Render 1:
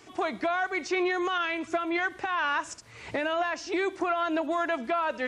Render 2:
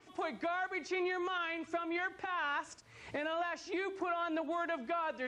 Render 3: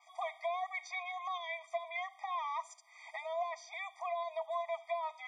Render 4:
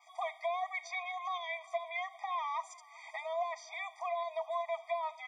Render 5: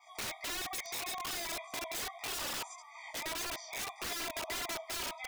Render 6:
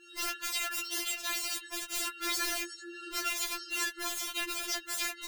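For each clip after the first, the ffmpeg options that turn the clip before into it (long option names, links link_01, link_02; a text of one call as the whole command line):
ffmpeg -i in.wav -af "bandreject=frequency=387.8:width_type=h:width=4,bandreject=frequency=775.6:width_type=h:width=4,adynamicequalizer=threshold=0.00316:dfrequency=5700:dqfactor=0.7:tfrequency=5700:tqfactor=0.7:attack=5:release=100:ratio=0.375:range=2.5:mode=cutabove:tftype=highshelf,volume=-8dB" out.wav
ffmpeg -i in.wav -af "afftfilt=real='re*eq(mod(floor(b*sr/1024/630),2),1)':imag='im*eq(mod(floor(b*sr/1024/630),2),1)':win_size=1024:overlap=0.75,volume=1dB" out.wav
ffmpeg -i in.wav -af "aecho=1:1:397|794|1191|1588:0.0794|0.0445|0.0249|0.0139,volume=1.5dB" out.wav
ffmpeg -i in.wav -af "flanger=delay=17:depth=5.3:speed=1.7,aeval=exprs='(mod(94.4*val(0)+1,2)-1)/94.4':channel_layout=same,volume=6dB" out.wav
ffmpeg -i in.wav -af "afftfilt=real='real(if(lt(b,1008),b+24*(1-2*mod(floor(b/24),2)),b),0)':imag='imag(if(lt(b,1008),b+24*(1-2*mod(floor(b/24),2)),b),0)':win_size=2048:overlap=0.75,afftfilt=real='re*4*eq(mod(b,16),0)':imag='im*4*eq(mod(b,16),0)':win_size=2048:overlap=0.75,volume=8dB" out.wav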